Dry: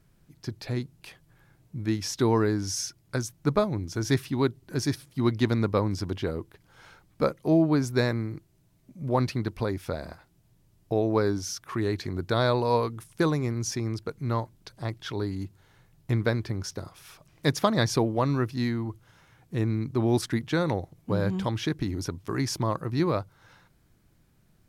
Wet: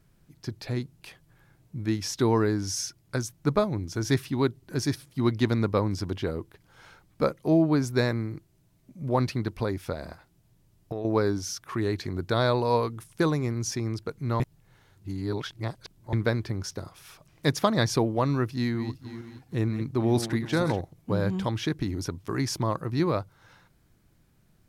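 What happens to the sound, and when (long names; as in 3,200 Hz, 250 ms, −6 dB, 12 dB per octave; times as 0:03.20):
0:09.92–0:11.05: downward compressor, threshold −28 dBFS
0:14.40–0:16.13: reverse
0:18.51–0:20.81: feedback delay that plays each chunk backwards 235 ms, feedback 52%, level −10 dB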